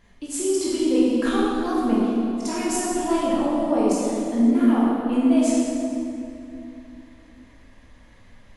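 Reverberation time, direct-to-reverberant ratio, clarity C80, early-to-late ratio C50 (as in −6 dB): 2.7 s, −7.5 dB, −1.0 dB, −3.0 dB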